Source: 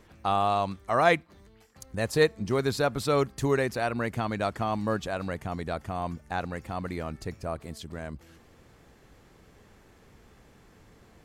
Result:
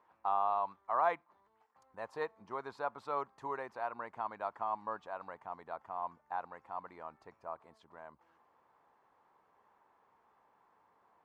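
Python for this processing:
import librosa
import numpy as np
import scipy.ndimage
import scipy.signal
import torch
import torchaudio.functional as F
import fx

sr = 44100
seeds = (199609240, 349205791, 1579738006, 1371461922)

y = fx.bandpass_q(x, sr, hz=960.0, q=4.2)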